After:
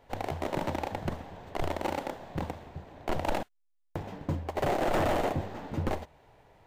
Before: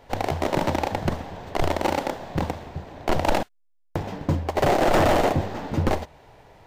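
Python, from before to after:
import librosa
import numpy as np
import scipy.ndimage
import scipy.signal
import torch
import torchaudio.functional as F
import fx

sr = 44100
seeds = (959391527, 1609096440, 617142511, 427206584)

y = fx.peak_eq(x, sr, hz=5200.0, db=-3.5, octaves=0.77)
y = y * 10.0 ** (-8.5 / 20.0)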